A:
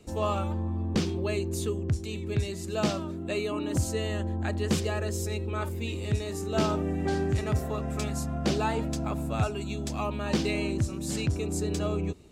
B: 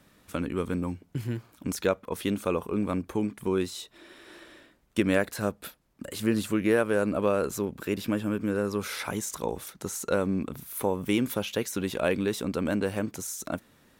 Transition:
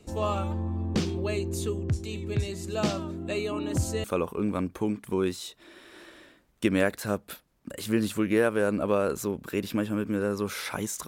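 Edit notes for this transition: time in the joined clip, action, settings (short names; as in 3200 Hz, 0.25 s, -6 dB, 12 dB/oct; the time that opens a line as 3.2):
A
4.04 switch to B from 2.38 s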